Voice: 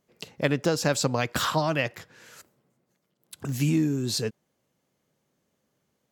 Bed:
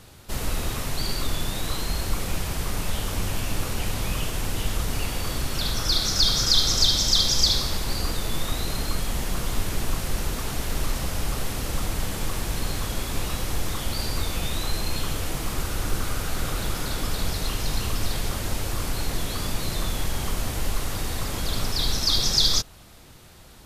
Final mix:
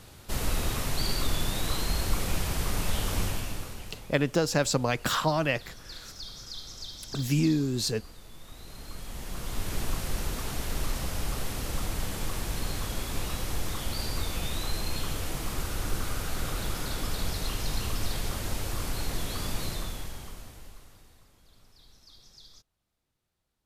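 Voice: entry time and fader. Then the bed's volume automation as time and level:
3.70 s, -1.0 dB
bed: 3.22 s -1.5 dB
4.16 s -21.5 dB
8.38 s -21.5 dB
9.76 s -4.5 dB
19.64 s -4.5 dB
21.36 s -33 dB

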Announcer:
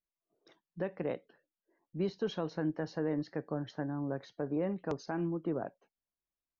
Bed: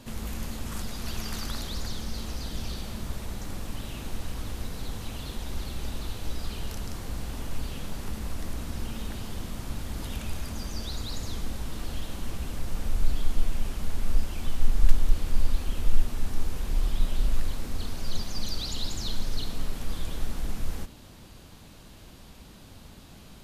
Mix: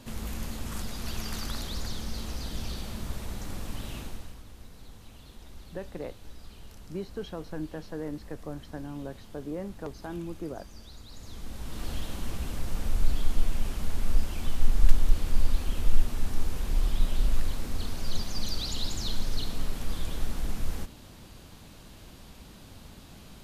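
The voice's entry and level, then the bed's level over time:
4.95 s, -2.5 dB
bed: 3.98 s -1 dB
4.43 s -13.5 dB
11.07 s -13.5 dB
11.87 s 0 dB

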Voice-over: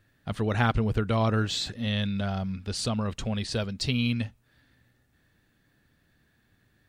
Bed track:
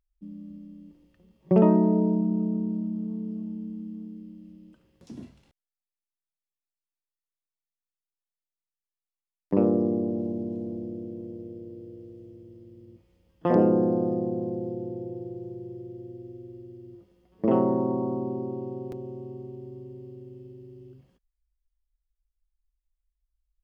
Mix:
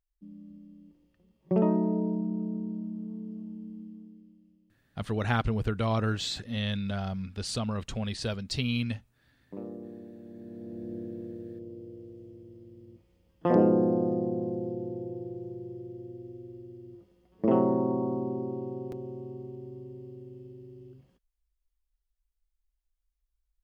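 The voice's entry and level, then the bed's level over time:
4.70 s, -3.0 dB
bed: 3.81 s -6 dB
4.77 s -18.5 dB
10.20 s -18.5 dB
10.95 s -1.5 dB

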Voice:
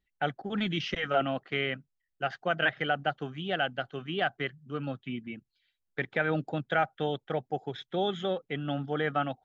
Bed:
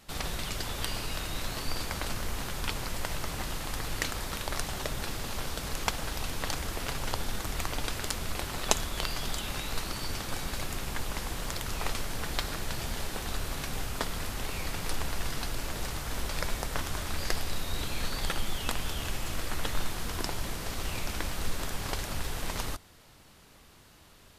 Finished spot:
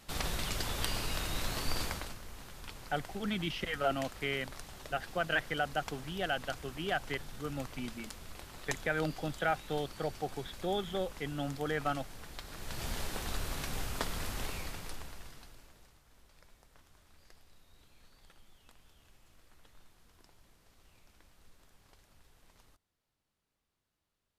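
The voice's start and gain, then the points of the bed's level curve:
2.70 s, -4.5 dB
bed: 1.86 s -1 dB
2.19 s -14 dB
12.43 s -14 dB
12.87 s -3 dB
14.44 s -3 dB
16.02 s -29.5 dB

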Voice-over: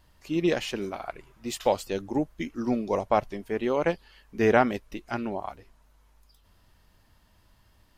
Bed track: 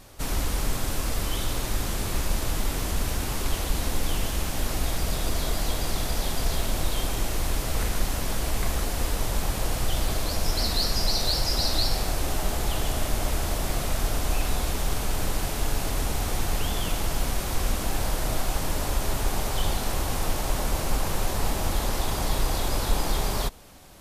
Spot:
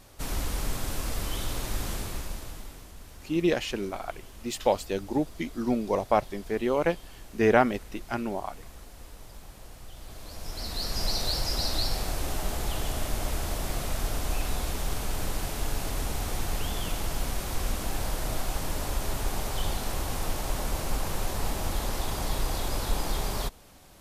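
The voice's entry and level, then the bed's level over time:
3.00 s, 0.0 dB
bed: 1.93 s -4 dB
2.92 s -20 dB
9.95 s -20 dB
11.05 s -4 dB

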